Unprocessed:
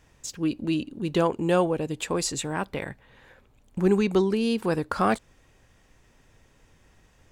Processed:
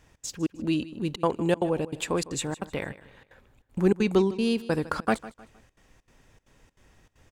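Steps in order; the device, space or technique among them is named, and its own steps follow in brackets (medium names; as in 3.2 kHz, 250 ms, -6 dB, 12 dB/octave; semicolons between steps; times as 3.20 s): trance gate with a delay (trance gate "xx.xxx.xx" 195 bpm -60 dB; feedback delay 155 ms, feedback 35%, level -17.5 dB)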